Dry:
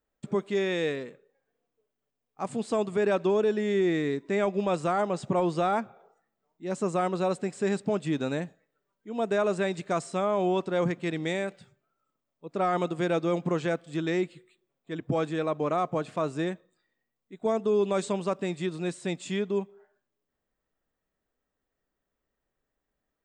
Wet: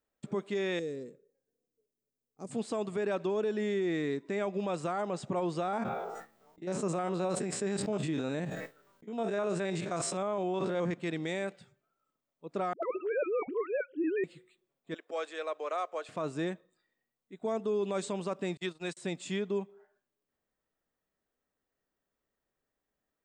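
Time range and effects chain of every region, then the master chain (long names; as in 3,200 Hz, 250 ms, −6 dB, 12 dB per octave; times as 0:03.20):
0:00.79–0:02.51: flat-topped bell 1,600 Hz −15 dB 2.8 octaves + downward compressor 1.5 to 1, threshold −36 dBFS
0:05.63–0:10.94: spectrum averaged block by block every 50 ms + noise gate with hold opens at −54 dBFS, closes at −60 dBFS + level that may fall only so fast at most 34 dB per second
0:12.73–0:14.24: three sine waves on the formant tracks + all-pass dispersion highs, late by 102 ms, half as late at 450 Hz
0:14.94–0:16.09: high-pass filter 500 Hz 24 dB per octave + parametric band 850 Hz −6 dB 0.86 octaves
0:18.57–0:18.97: noise gate −35 dBFS, range −40 dB + tilt shelving filter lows −5 dB, about 670 Hz + multiband upward and downward expander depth 40%
whole clip: low-shelf EQ 72 Hz −8 dB; brickwall limiter −22 dBFS; level −2.5 dB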